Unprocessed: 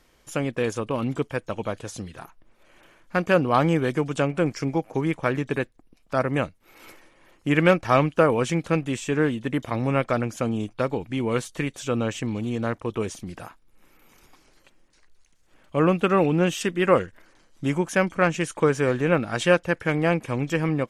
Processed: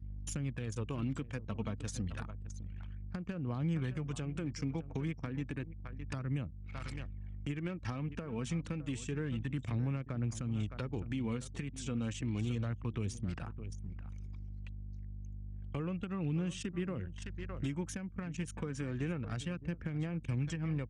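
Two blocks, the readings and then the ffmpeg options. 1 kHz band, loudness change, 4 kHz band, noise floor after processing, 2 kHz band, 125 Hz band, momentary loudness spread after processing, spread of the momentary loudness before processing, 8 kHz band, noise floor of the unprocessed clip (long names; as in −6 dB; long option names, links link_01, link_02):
−23.0 dB, −15.0 dB, −14.0 dB, −48 dBFS, −20.0 dB, −7.5 dB, 10 LU, 10 LU, −10.0 dB, −60 dBFS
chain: -filter_complex "[0:a]aphaser=in_gain=1:out_gain=1:delay=4.5:decay=0.35:speed=0.3:type=sinusoidal,aeval=exprs='val(0)+0.00708*(sin(2*PI*50*n/s)+sin(2*PI*2*50*n/s)/2+sin(2*PI*3*50*n/s)/3+sin(2*PI*4*50*n/s)/4+sin(2*PI*5*50*n/s)/5)':channel_layout=same,aresample=22050,aresample=44100,highpass=frequency=52:width=0.5412,highpass=frequency=52:width=1.3066,equalizer=frequency=440:width_type=o:width=3:gain=-14,volume=16dB,asoftclip=hard,volume=-16dB,acompressor=threshold=-31dB:ratio=16,aecho=1:1:611:0.158,acrossover=split=400[link_01][link_02];[link_02]acompressor=threshold=-50dB:ratio=4[link_03];[link_01][link_03]amix=inputs=2:normalize=0,anlmdn=0.00398,alimiter=level_in=10dB:limit=-24dB:level=0:latency=1:release=466,volume=-10dB,volume=7dB"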